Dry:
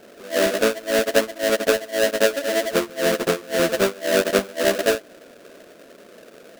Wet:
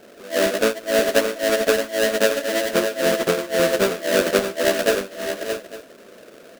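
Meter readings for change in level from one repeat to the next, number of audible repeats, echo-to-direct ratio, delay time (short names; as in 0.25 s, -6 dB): no steady repeat, 4, -6.5 dB, 0.533 s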